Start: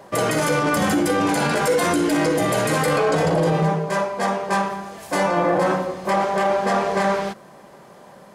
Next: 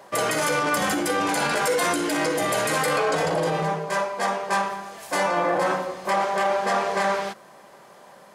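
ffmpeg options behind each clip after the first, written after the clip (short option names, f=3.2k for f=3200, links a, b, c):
-af "lowshelf=f=380:g=-11.5"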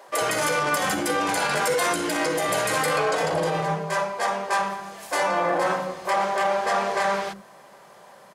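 -filter_complex "[0:a]acrossover=split=280[a][b];[a]adelay=80[c];[c][b]amix=inputs=2:normalize=0"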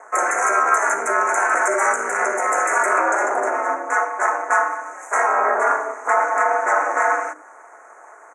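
-af "aeval=exprs='val(0)*sin(2*PI*110*n/s)':c=same,asuperstop=centerf=3900:order=8:qfactor=0.81,highpass=f=400:w=0.5412,highpass=f=400:w=1.3066,equalizer=f=480:t=q:w=4:g=-6,equalizer=f=1.4k:t=q:w=4:g=7,equalizer=f=6.3k:t=q:w=4:g=9,lowpass=f=8.3k:w=0.5412,lowpass=f=8.3k:w=1.3066,volume=7.5dB"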